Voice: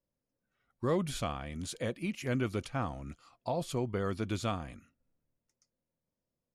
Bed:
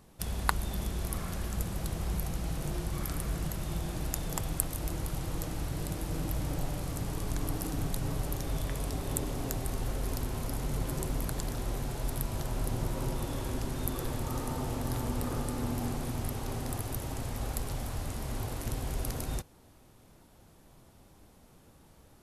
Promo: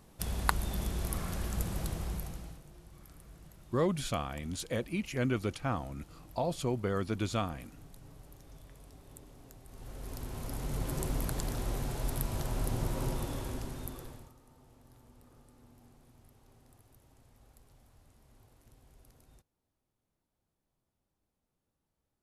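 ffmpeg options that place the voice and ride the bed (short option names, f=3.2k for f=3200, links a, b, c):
-filter_complex "[0:a]adelay=2900,volume=1dB[a];[1:a]volume=19dB,afade=t=out:st=1.8:d=0.83:silence=0.105925,afade=t=in:st=9.67:d=1.39:silence=0.105925,afade=t=out:st=13.08:d=1.26:silence=0.0501187[b];[a][b]amix=inputs=2:normalize=0"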